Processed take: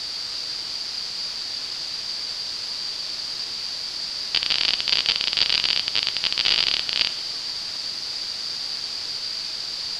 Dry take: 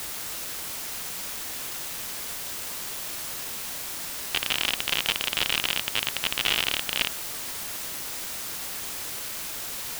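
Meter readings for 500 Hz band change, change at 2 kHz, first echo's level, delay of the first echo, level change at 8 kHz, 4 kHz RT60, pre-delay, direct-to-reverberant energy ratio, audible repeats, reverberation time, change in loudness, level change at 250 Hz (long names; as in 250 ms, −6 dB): −2.0 dB, 0.0 dB, no echo audible, no echo audible, −5.0 dB, 1.1 s, 5 ms, 12.0 dB, no echo audible, 1.5 s, +5.0 dB, −2.0 dB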